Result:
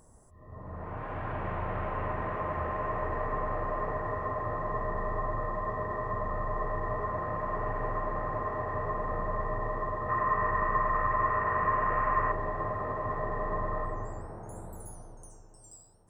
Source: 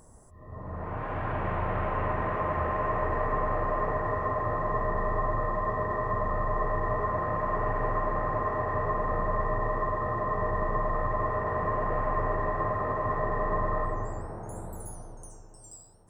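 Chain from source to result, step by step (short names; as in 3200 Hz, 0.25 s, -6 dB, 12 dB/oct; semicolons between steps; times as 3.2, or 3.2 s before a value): 10.09–12.32 band shelf 1700 Hz +9 dB; gain -4 dB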